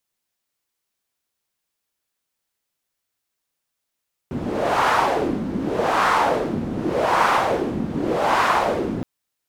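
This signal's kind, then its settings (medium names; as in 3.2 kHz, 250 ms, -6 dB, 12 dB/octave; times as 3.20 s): wind-like swept noise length 4.72 s, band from 220 Hz, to 1.1 kHz, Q 2.3, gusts 4, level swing 8 dB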